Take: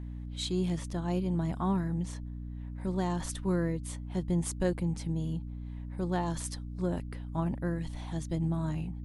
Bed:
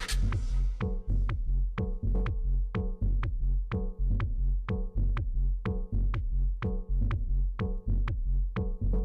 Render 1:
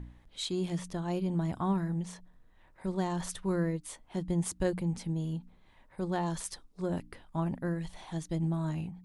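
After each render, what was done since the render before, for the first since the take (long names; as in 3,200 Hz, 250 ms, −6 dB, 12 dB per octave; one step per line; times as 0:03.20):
hum removal 60 Hz, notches 5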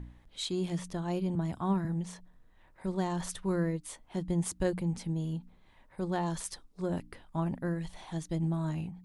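0:01.35–0:01.85: multiband upward and downward expander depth 70%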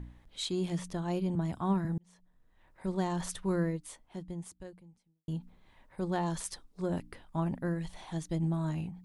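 0:01.98–0:02.89: fade in
0:03.61–0:05.28: fade out quadratic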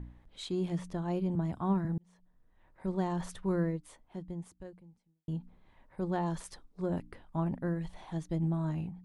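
high-shelf EQ 2,700 Hz −10 dB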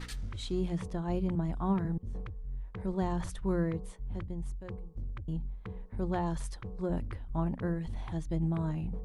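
mix in bed −10.5 dB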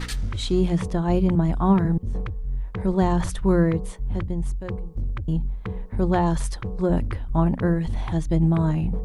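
level +11.5 dB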